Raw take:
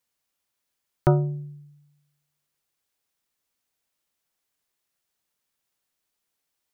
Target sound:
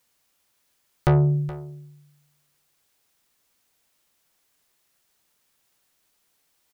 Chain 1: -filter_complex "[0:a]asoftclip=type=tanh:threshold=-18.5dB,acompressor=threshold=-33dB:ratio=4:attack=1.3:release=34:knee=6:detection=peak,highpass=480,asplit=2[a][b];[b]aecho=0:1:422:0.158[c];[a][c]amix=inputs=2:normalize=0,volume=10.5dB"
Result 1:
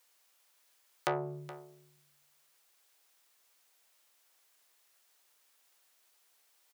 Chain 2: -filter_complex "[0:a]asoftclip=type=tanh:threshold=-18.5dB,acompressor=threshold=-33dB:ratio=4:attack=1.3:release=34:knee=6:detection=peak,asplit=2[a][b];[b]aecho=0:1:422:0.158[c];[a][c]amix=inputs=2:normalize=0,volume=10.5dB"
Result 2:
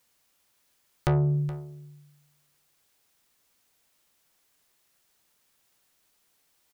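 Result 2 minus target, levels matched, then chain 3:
compressor: peak gain reduction +5.5 dB
-filter_complex "[0:a]asoftclip=type=tanh:threshold=-18.5dB,acompressor=threshold=-25.5dB:ratio=4:attack=1.3:release=34:knee=6:detection=peak,asplit=2[a][b];[b]aecho=0:1:422:0.158[c];[a][c]amix=inputs=2:normalize=0,volume=10.5dB"

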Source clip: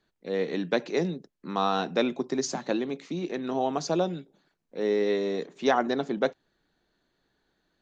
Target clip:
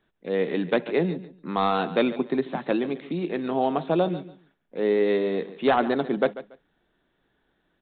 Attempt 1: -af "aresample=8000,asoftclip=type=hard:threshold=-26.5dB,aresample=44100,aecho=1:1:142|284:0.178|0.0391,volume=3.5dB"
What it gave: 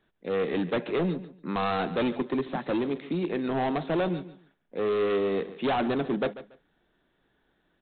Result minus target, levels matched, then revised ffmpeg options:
hard clip: distortion +15 dB
-af "aresample=8000,asoftclip=type=hard:threshold=-16dB,aresample=44100,aecho=1:1:142|284:0.178|0.0391,volume=3.5dB"

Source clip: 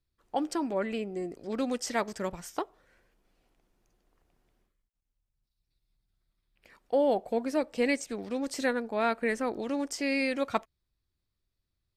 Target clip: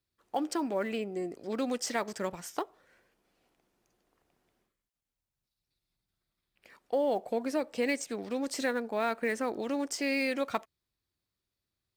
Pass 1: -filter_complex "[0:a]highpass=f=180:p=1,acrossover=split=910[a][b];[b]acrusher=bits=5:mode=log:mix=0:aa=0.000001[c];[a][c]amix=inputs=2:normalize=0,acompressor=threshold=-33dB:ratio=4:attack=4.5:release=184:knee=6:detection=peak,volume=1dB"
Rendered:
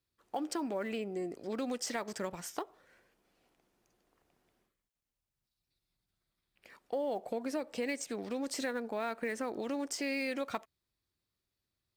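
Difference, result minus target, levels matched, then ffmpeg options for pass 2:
compressor: peak gain reduction +6.5 dB
-filter_complex "[0:a]highpass=f=180:p=1,acrossover=split=910[a][b];[b]acrusher=bits=5:mode=log:mix=0:aa=0.000001[c];[a][c]amix=inputs=2:normalize=0,acompressor=threshold=-24.5dB:ratio=4:attack=4.5:release=184:knee=6:detection=peak,volume=1dB"

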